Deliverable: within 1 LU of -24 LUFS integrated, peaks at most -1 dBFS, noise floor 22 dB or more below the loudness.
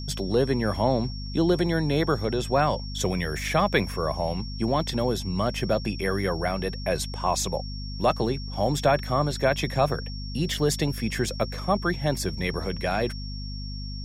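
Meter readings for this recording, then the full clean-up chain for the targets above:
hum 50 Hz; highest harmonic 250 Hz; hum level -32 dBFS; steady tone 5.5 kHz; tone level -40 dBFS; loudness -26.5 LUFS; peak level -9.0 dBFS; loudness target -24.0 LUFS
-> de-hum 50 Hz, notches 5; band-stop 5.5 kHz, Q 30; trim +2.5 dB

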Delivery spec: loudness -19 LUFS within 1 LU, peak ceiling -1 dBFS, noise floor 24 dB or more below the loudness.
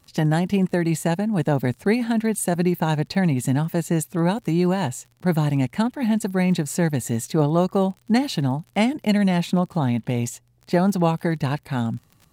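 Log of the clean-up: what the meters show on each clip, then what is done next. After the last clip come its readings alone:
tick rate 38 per s; loudness -22.5 LUFS; peak level -7.0 dBFS; loudness target -19.0 LUFS
-> de-click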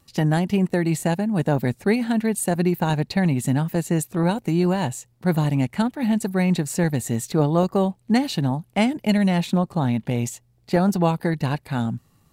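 tick rate 0.24 per s; loudness -22.5 LUFS; peak level -7.0 dBFS; loudness target -19.0 LUFS
-> trim +3.5 dB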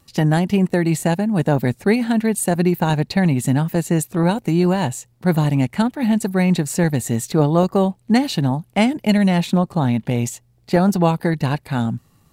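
loudness -19.0 LUFS; peak level -3.5 dBFS; noise floor -57 dBFS

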